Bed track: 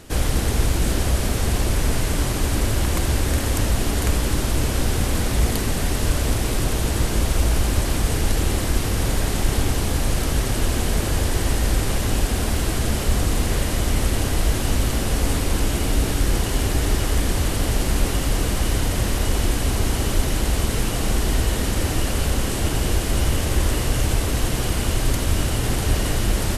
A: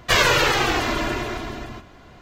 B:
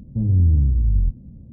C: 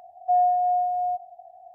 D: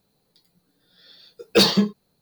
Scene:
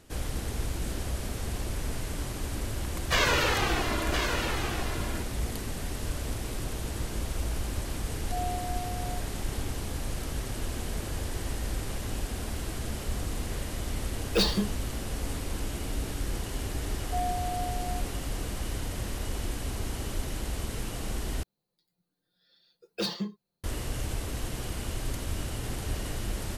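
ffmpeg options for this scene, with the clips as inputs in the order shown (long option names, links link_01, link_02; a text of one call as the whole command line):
ffmpeg -i bed.wav -i cue0.wav -i cue1.wav -i cue2.wav -i cue3.wav -filter_complex "[3:a]asplit=2[link_01][link_02];[4:a]asplit=2[link_03][link_04];[0:a]volume=-12.5dB[link_05];[1:a]aecho=1:1:1015:0.473[link_06];[link_04]aecho=1:1:5.7:0.38[link_07];[link_05]asplit=2[link_08][link_09];[link_08]atrim=end=21.434[link_10];[link_07]atrim=end=2.21,asetpts=PTS-STARTPTS,volume=-16.5dB[link_11];[link_09]atrim=start=23.636[link_12];[link_06]atrim=end=2.21,asetpts=PTS-STARTPTS,volume=-8dB,afade=type=in:duration=0.004:curve=hsin,afade=type=out:start_time=2.206:duration=0.004:curve=hsin,adelay=3020[link_13];[link_01]atrim=end=1.74,asetpts=PTS-STARTPTS,volume=-15dB,afade=type=in:duration=0.004:curve=hsin,afade=type=out:start_time=1.736:duration=0.004:curve=hsin,adelay=8030[link_14];[link_03]atrim=end=2.21,asetpts=PTS-STARTPTS,volume=-9.5dB,afade=type=in:duration=0.004:curve=hsin,afade=type=out:start_time=2.206:duration=0.004:curve=hsin,adelay=12800[link_15];[link_02]atrim=end=1.74,asetpts=PTS-STARTPTS,volume=-12dB,afade=type=in:duration=0.004:curve=hsin,afade=type=out:start_time=1.736:duration=0.004:curve=hsin,adelay=742644S[link_16];[link_10][link_11]acrossfade=duration=0.004:curve1=hsin:curve2=hsin[link_17];[link_17][link_12]acrossfade=duration=0.004:curve1=hsin:curve2=hsin[link_18];[link_18][link_13][link_14][link_15][link_16]amix=inputs=5:normalize=0" out.wav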